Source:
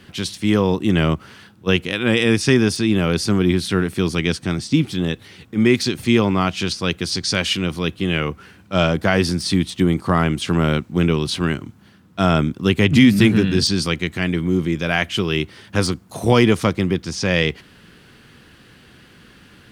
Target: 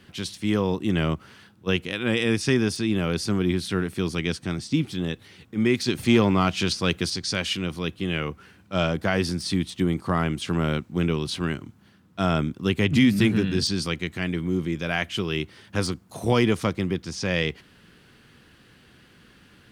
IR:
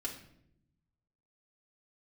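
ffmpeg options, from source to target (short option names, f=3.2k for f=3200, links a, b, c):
-filter_complex "[0:a]asettb=1/sr,asplit=3[a][b][c];[a]atrim=end=5.884[d];[b]atrim=start=5.88:end=7.1,asetpts=PTS-STARTPTS,afade=t=in:d=0.004:c=qsin,afade=t=out:st=1.216:d=0.004:c=qsin,acontrast=22[e];[c]atrim=start=7.096[f];[d][e]acrossfade=d=0.004:c1=hsin:c2=qsin[g];[g][f]acrossfade=d=0.004:c1=qsin:c2=hsin,volume=-6.5dB"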